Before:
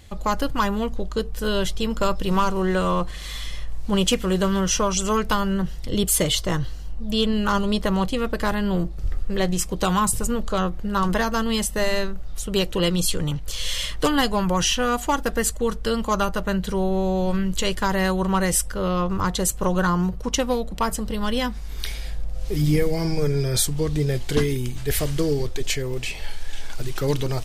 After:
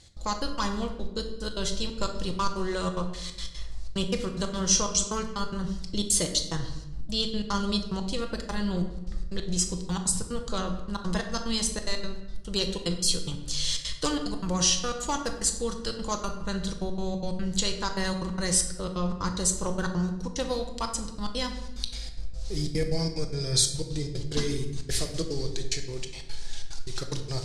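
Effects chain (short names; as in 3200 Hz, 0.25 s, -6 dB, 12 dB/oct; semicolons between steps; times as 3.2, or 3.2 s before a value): band shelf 6300 Hz +13.5 dB; step gate "x.xx.x.xxxx." 182 bpm -60 dB; air absorption 61 m; shoebox room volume 460 m³, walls mixed, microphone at 0.76 m; gain -8.5 dB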